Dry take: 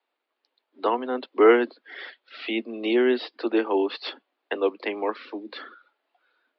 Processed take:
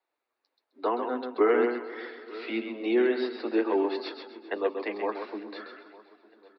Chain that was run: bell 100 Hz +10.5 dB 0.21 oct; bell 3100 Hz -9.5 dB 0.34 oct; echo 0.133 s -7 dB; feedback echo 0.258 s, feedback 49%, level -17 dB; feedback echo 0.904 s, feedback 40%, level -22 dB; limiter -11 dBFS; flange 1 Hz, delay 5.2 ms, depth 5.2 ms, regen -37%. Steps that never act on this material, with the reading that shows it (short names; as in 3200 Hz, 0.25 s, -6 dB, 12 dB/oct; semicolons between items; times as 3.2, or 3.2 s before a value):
bell 100 Hz: input band starts at 200 Hz